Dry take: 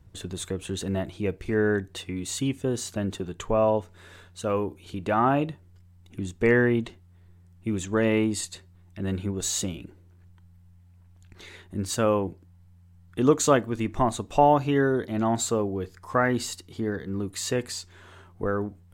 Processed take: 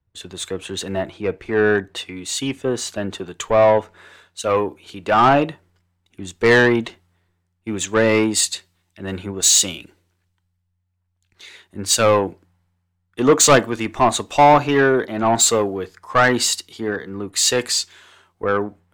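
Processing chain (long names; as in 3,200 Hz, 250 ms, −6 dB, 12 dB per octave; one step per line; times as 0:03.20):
mid-hump overdrive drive 20 dB, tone 2,900 Hz, clips at −6.5 dBFS, from 0:03.28 tone 6,100 Hz
multiband upward and downward expander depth 70%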